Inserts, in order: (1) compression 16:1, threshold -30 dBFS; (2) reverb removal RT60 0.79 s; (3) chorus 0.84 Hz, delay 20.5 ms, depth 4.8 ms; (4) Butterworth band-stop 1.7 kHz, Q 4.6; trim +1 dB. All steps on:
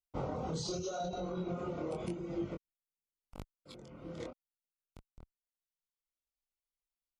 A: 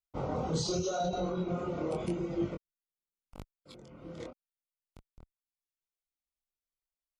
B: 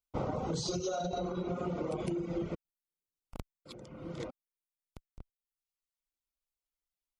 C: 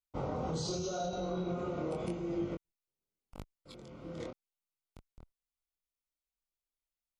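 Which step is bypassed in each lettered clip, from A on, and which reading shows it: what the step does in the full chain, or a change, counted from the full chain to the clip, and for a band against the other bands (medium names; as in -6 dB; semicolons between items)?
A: 1, mean gain reduction 3.5 dB; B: 3, loudness change +3.0 LU; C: 2, momentary loudness spread change +2 LU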